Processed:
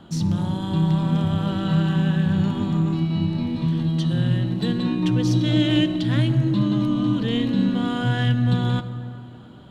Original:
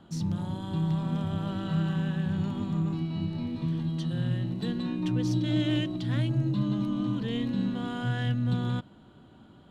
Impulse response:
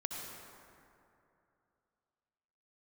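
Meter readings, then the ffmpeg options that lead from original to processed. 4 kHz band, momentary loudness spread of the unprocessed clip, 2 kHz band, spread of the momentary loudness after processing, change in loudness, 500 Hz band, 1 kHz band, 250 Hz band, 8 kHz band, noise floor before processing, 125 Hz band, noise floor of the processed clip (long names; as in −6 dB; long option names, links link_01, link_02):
+9.5 dB, 5 LU, +8.5 dB, 4 LU, +8.0 dB, +8.0 dB, +8.5 dB, +8.0 dB, can't be measured, −54 dBFS, +8.0 dB, −41 dBFS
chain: -filter_complex "[0:a]equalizer=frequency=3300:width_type=o:width=0.77:gain=2,asplit=2[link_01][link_02];[1:a]atrim=start_sample=2205,asetrate=52920,aresample=44100[link_03];[link_02][link_03]afir=irnorm=-1:irlink=0,volume=-6.5dB[link_04];[link_01][link_04]amix=inputs=2:normalize=0,volume=5.5dB"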